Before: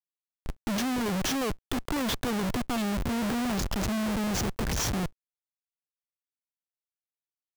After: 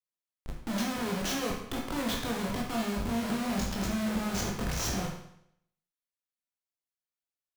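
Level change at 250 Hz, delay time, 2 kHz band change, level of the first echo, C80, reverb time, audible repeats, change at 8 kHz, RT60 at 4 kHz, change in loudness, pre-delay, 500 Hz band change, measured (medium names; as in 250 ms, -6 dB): -3.0 dB, no echo, -2.0 dB, no echo, 7.5 dB, 0.70 s, no echo, -2.5 dB, 0.70 s, -2.5 dB, 18 ms, -2.0 dB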